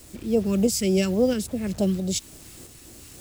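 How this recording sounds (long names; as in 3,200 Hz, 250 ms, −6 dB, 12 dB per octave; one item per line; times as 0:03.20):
phaser sweep stages 2, 3.5 Hz, lowest notch 660–1,800 Hz
a quantiser's noise floor 8 bits, dither none
tremolo saw up 1.5 Hz, depth 40%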